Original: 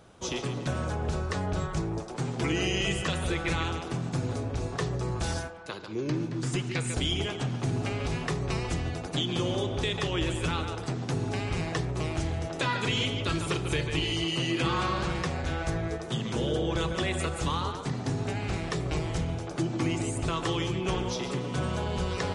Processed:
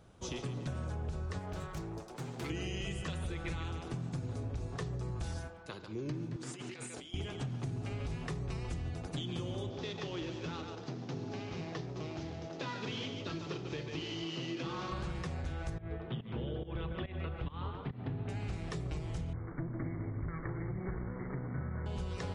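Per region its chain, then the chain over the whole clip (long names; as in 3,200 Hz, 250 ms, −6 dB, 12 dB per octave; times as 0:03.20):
0:01.39–0:02.50: phase distortion by the signal itself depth 0.16 ms + low-shelf EQ 250 Hz −10 dB
0:06.36–0:07.14: high-pass filter 310 Hz + compressor whose output falls as the input rises −39 dBFS
0:09.70–0:14.92: variable-slope delta modulation 32 kbit/s + high-pass filter 190 Hz + parametric band 1,800 Hz −3.5 dB 1.9 octaves
0:15.78–0:18.29: Butterworth low-pass 3,400 Hz + fake sidechain pumping 141 BPM, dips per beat 1, −18 dB, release 240 ms
0:19.33–0:21.86: lower of the sound and its delayed copy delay 0.62 ms + linear-phase brick-wall low-pass 2,300 Hz
whole clip: low-shelf EQ 190 Hz +9 dB; downward compressor, threshold −26 dBFS; level −8.5 dB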